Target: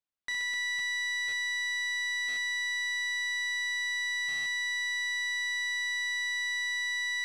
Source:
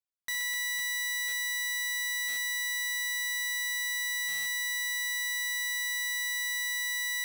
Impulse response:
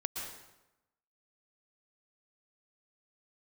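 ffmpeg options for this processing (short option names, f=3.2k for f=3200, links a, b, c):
-filter_complex "[0:a]lowpass=4.5k,asplit=2[a][b];[1:a]atrim=start_sample=2205[c];[b][c]afir=irnorm=-1:irlink=0,volume=-15.5dB[d];[a][d]amix=inputs=2:normalize=0"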